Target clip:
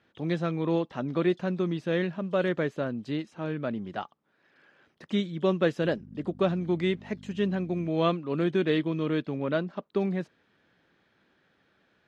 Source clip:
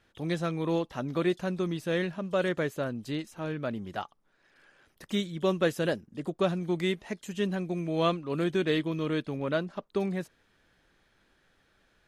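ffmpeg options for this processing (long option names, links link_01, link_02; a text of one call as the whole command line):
ffmpeg -i in.wav -filter_complex "[0:a]lowshelf=frequency=220:gain=8.5,asettb=1/sr,asplit=3[link_01][link_02][link_03];[link_01]atrim=end=5.814[link_04];[link_02]atrim=start=5.81:end=7.89,asetpts=PTS-STARTPTS,afade=type=in:duration=0.004:curve=qsin,afade=type=out:start_time=2.076:duration=0.004:curve=qsin,aeval=exprs='val(0)+0.0141*(sin(2*PI*50*n/s)+sin(2*PI*2*50*n/s)/2+sin(2*PI*3*50*n/s)/3+sin(2*PI*4*50*n/s)/4+sin(2*PI*5*50*n/s)/5)':channel_layout=same[link_05];[link_03]atrim=start=7.886[link_06];[link_04][link_05]acrossfade=duration=0.004:curve1=hsin:curve2=qsin[link_07];[link_07][link_06]acrossfade=duration=0.004:curve1=qsin:curve2=hsin,highpass=170,lowpass=4200" out.wav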